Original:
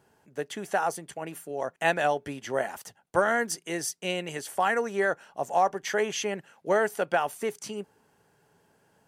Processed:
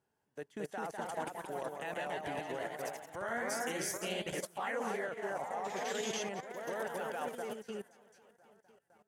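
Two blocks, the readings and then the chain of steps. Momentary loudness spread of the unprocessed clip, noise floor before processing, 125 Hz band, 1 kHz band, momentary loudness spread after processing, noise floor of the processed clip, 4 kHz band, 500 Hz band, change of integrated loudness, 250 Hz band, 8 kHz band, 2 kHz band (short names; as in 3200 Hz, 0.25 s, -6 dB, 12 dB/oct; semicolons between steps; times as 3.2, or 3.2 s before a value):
12 LU, -67 dBFS, -8.5 dB, -11.0 dB, 7 LU, -82 dBFS, -7.0 dB, -10.5 dB, -10.0 dB, -8.0 dB, -7.0 dB, -10.5 dB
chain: echo with dull and thin repeats by turns 0.252 s, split 1600 Hz, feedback 66%, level -9 dB; level quantiser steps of 18 dB; echoes that change speed 0.242 s, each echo +1 st, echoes 3; upward expander 1.5:1, over -48 dBFS; gain -2.5 dB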